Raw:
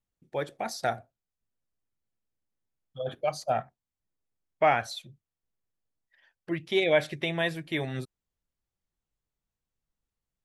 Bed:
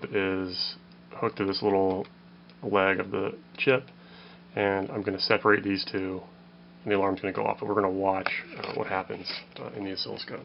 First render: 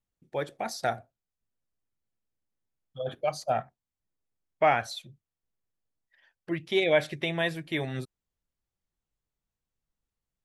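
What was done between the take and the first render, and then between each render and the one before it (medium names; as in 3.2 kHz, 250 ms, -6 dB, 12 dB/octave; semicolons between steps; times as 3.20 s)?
no audible change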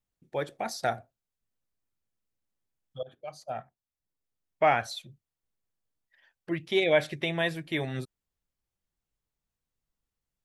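3.03–4.73 s: fade in, from -18.5 dB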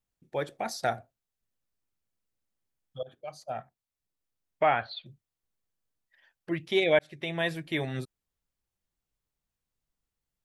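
4.63–5.06 s: rippled Chebyshev low-pass 4.6 kHz, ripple 3 dB; 6.99–7.63 s: fade in equal-power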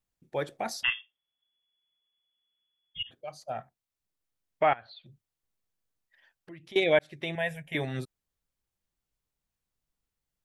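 0.83–3.11 s: frequency inversion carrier 3.4 kHz; 4.73–6.76 s: compression 2.5:1, threshold -51 dBFS; 7.35–7.75 s: static phaser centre 1.2 kHz, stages 6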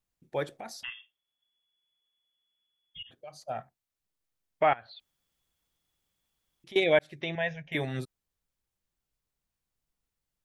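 0.54–3.36 s: compression 2:1, threshold -45 dBFS; 5.00–6.64 s: room tone; 7.21–7.72 s: brick-wall FIR low-pass 6.8 kHz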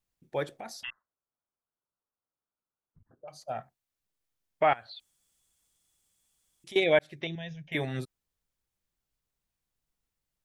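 0.90–3.28 s: steep low-pass 1.5 kHz 72 dB/octave; 4.69–6.76 s: peaking EQ 8.3 kHz +14 dB 1.1 oct; 7.27–7.68 s: high-order bell 1.1 kHz -14.5 dB 2.7 oct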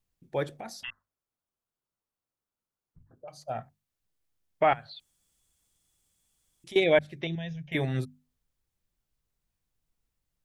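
bass shelf 260 Hz +7.5 dB; hum notches 50/100/150/200/250 Hz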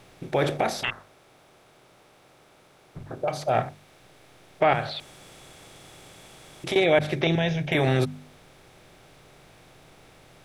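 spectral levelling over time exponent 0.6; in parallel at -1.5 dB: compressor with a negative ratio -28 dBFS, ratio -0.5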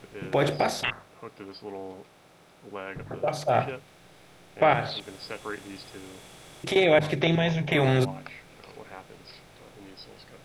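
add bed -14.5 dB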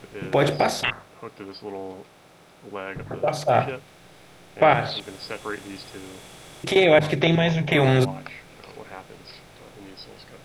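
trim +4 dB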